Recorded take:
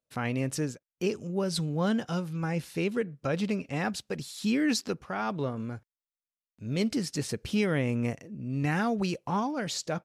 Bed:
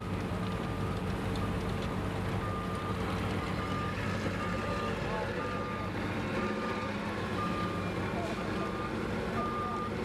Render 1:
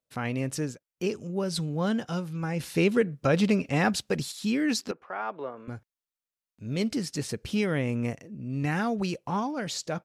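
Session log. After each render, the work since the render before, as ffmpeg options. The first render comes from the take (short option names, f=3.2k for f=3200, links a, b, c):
-filter_complex "[0:a]asettb=1/sr,asplit=3[a][b][c];[a]atrim=end=2.604[d];[b]atrim=start=2.6:end=4.32,asetpts=PTS-STARTPTS,afade=t=in:d=0.004:c=qsin,afade=t=out:st=1.716:d=0.004:c=qsin,acontrast=61[e];[c]atrim=start=4.316[f];[d][e]acrossfade=d=0.004:c1=hsin:c2=qsin[g];[g][f]acrossfade=d=0.004:c1=qsin:c2=hsin,asettb=1/sr,asplit=3[h][i][j];[h]atrim=end=4.914[k];[i]atrim=start=4.91:end=5.68,asetpts=PTS-STARTPTS,afade=t=in:d=0.004:c=qsin,afade=t=out:st=0.766:d=0.004:c=qsin,acrossover=split=350 2700:gain=0.0708 1 0.1[l][m][n];[l][m][n]amix=inputs=3:normalize=0[o];[j]atrim=start=5.676[p];[k][o]acrossfade=d=0.004:c1=hsin:c2=qsin[q];[q][p]acrossfade=d=0.004:c1=qsin:c2=hsin"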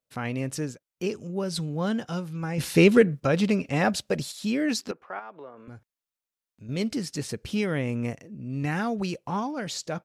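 -filter_complex "[0:a]asettb=1/sr,asplit=3[a][b][c];[a]atrim=end=2.584[d];[b]atrim=start=2.58:end=3.2,asetpts=PTS-STARTPTS,afade=t=in:d=0.004:c=qsin,afade=t=out:st=0.616:d=0.004:c=qsin,acontrast=75[e];[c]atrim=start=3.196[f];[d][e]acrossfade=d=0.004:c1=hsin:c2=qsin[g];[g][f]acrossfade=d=0.004:c1=qsin:c2=hsin,asettb=1/sr,asplit=3[h][i][j];[h]atrim=end=3.814[k];[i]atrim=start=3.81:end=4.69,asetpts=PTS-STARTPTS,afade=t=in:d=0.004:c=qsin,afade=t=out:st=0.876:d=0.004:c=qsin,equalizer=f=600:t=o:w=0.31:g=9[l];[j]atrim=start=4.686[m];[k][l]acrossfade=d=0.004:c1=hsin:c2=qsin[n];[n][m]acrossfade=d=0.004:c1=qsin:c2=hsin,asettb=1/sr,asplit=3[o][p][q];[o]atrim=end=5.194[r];[p]atrim=start=5.19:end=6.69,asetpts=PTS-STARTPTS,afade=t=in:d=0.004:c=qsin,afade=t=out:st=1.496:d=0.004:c=qsin,acompressor=threshold=-44dB:ratio=2:attack=3.2:release=140:knee=1:detection=peak[s];[q]atrim=start=6.686[t];[r][s]acrossfade=d=0.004:c1=hsin:c2=qsin[u];[u][t]acrossfade=d=0.004:c1=qsin:c2=hsin"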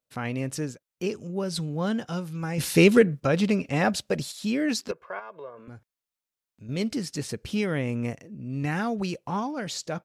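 -filter_complex "[0:a]asettb=1/sr,asplit=3[a][b][c];[a]atrim=end=2.214[d];[b]atrim=start=2.21:end=2.99,asetpts=PTS-STARTPTS,afade=t=in:d=0.004:c=qsin,afade=t=out:st=0.776:d=0.004:c=qsin,highshelf=f=4.7k:g=5.5[e];[c]atrim=start=2.986[f];[d][e]acrossfade=d=0.004:c1=hsin:c2=qsin[g];[g][f]acrossfade=d=0.004:c1=qsin:c2=hsin,asettb=1/sr,asplit=3[h][i][j];[h]atrim=end=4.884[k];[i]atrim=start=4.88:end=5.59,asetpts=PTS-STARTPTS,afade=t=in:d=0.004:c=qsin,afade=t=out:st=0.706:d=0.004:c=qsin,aecho=1:1:1.9:0.65,atrim=end_sample=31311[l];[j]atrim=start=5.586[m];[k][l]acrossfade=d=0.004:c1=hsin:c2=qsin[n];[n][m]acrossfade=d=0.004:c1=qsin:c2=hsin"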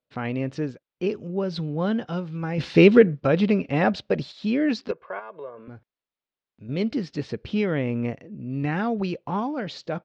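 -af "lowpass=f=4.2k:w=0.5412,lowpass=f=4.2k:w=1.3066,equalizer=f=380:w=0.57:g=4"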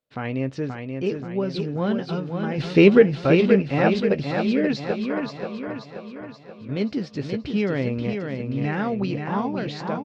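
-filter_complex "[0:a]asplit=2[a][b];[b]adelay=15,volume=-13dB[c];[a][c]amix=inputs=2:normalize=0,aecho=1:1:530|1060|1590|2120|2650|3180|3710:0.531|0.276|0.144|0.0746|0.0388|0.0202|0.0105"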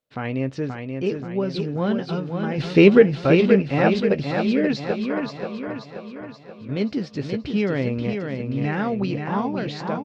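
-af "volume=1dB"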